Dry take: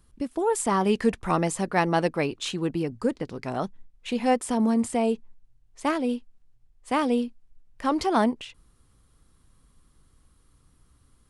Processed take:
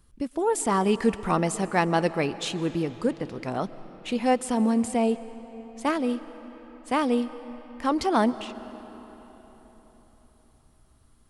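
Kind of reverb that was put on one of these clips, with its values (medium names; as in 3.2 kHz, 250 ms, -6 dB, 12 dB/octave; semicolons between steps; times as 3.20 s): algorithmic reverb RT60 4.4 s, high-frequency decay 0.7×, pre-delay 95 ms, DRR 14.5 dB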